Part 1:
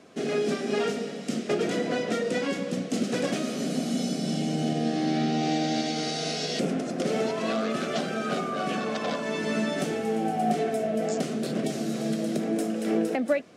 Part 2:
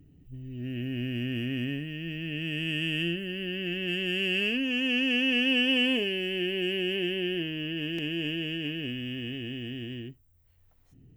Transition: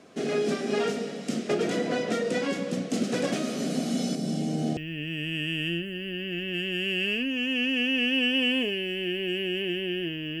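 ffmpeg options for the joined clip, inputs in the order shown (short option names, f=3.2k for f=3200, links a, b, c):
-filter_complex "[0:a]asettb=1/sr,asplit=3[a][b][c];[a]atrim=end=4.154[d];[b]atrim=start=4.15:end=4.77,asetpts=PTS-STARTPTS,afade=t=in:d=0.004:c=qsin,afade=t=out:st=0.616:d=0.004:c=qsin,equalizer=f=2.3k:w=0.37:g=-6.5[e];[c]atrim=start=4.766[f];[d][e]acrossfade=d=0.004:c1=hsin:c2=qsin[g];[g][f]acrossfade=d=0.004:c1=qsin:c2=hsin,apad=whole_dur=10.4,atrim=end=10.4,atrim=end=4.772[h];[1:a]atrim=start=2.108:end=7.74[i];[h][i]acrossfade=d=0.004:c1=hsin:c2=hsin"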